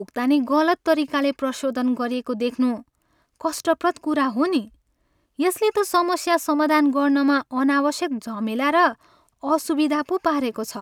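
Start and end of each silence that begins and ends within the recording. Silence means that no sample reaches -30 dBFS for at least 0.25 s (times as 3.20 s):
2.79–3.41 s
4.65–5.39 s
8.92–9.43 s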